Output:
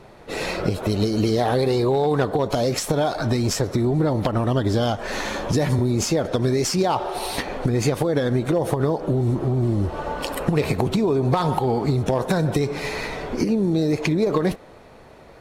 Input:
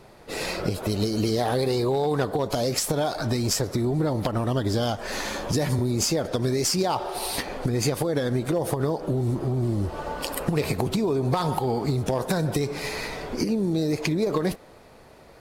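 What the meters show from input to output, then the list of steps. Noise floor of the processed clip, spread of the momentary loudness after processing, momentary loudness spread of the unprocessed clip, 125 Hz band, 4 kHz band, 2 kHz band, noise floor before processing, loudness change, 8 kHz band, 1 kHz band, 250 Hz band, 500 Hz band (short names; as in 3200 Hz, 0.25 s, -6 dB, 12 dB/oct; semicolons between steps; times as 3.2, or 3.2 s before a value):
-46 dBFS, 7 LU, 6 LU, +4.0 dB, +0.5 dB, +3.5 dB, -50 dBFS, +3.5 dB, -1.0 dB, +4.0 dB, +4.0 dB, +4.0 dB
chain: high shelf 7000 Hz -10 dB; notch 4800 Hz, Q 13; gain +4 dB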